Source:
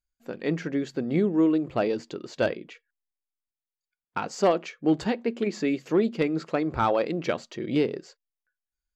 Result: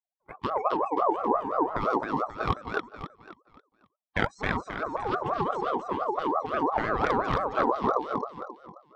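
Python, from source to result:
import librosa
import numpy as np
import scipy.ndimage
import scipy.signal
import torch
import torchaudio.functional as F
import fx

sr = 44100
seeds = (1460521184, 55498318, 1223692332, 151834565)

y = fx.wiener(x, sr, points=41)
y = fx.noise_reduce_blind(y, sr, reduce_db=28)
y = fx.over_compress(y, sr, threshold_db=-33.0, ratio=-1.0)
y = fx.echo_feedback(y, sr, ms=267, feedback_pct=38, wet_db=-3)
y = fx.ring_lfo(y, sr, carrier_hz=780.0, swing_pct=25, hz=5.8)
y = y * librosa.db_to_amplitude(7.0)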